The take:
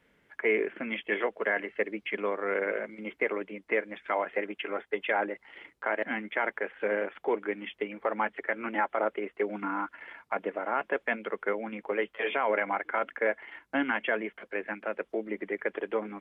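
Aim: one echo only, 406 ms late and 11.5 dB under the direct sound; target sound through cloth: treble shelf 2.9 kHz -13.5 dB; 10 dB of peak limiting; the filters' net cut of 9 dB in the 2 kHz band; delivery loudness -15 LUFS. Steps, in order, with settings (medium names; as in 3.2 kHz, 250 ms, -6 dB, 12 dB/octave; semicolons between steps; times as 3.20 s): peaking EQ 2 kHz -6.5 dB; peak limiter -27 dBFS; treble shelf 2.9 kHz -13.5 dB; delay 406 ms -11.5 dB; trim +24.5 dB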